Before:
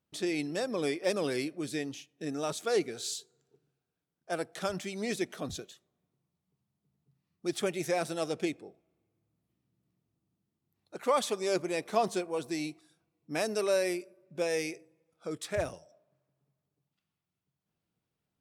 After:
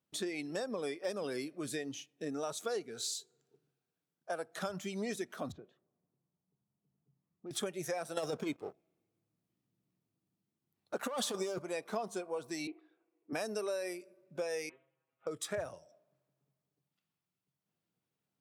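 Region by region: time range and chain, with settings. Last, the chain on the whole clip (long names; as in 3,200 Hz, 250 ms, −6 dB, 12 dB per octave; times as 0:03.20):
0:05.52–0:07.51: phase distortion by the signal itself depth 0.095 ms + low-pass filter 1,100 Hz + downward compressor 2 to 1, threshold −47 dBFS
0:08.17–0:11.59: leveller curve on the samples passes 2 + compressor whose output falls as the input rises −26 dBFS, ratio −0.5
0:12.67–0:13.33: low-pass filter 2,700 Hz 24 dB per octave + low shelf with overshoot 240 Hz −13.5 dB, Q 3
0:14.69–0:15.27: variable-slope delta modulation 16 kbit/s + stiff-string resonator 130 Hz, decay 0.2 s, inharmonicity 0.002
whole clip: noise reduction from a noise print of the clip's start 7 dB; high-pass filter 120 Hz; downward compressor 5 to 1, threshold −40 dBFS; level +4.5 dB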